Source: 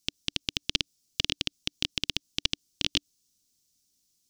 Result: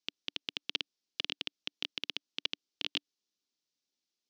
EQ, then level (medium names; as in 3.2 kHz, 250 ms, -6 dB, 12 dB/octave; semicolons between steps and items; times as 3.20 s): band-pass 380–3900 Hz; distance through air 63 m; -4.0 dB